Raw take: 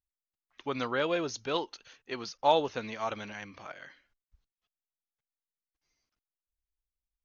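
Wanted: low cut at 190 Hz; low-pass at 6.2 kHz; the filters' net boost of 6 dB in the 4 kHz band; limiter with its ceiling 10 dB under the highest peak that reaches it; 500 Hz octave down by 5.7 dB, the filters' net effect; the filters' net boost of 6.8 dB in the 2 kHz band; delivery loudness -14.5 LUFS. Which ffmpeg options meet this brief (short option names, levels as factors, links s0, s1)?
-af "highpass=190,lowpass=6200,equalizer=f=500:t=o:g=-7.5,equalizer=f=2000:t=o:g=8.5,equalizer=f=4000:t=o:g=5,volume=11.2,alimiter=limit=0.944:level=0:latency=1"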